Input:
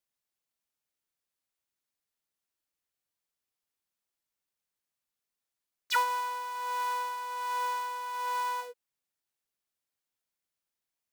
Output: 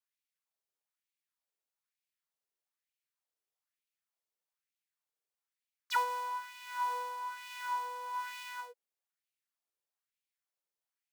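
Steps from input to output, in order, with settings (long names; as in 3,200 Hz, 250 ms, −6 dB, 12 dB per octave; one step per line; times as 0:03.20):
auto-filter high-pass sine 1.1 Hz 400–2,500 Hz
level −7 dB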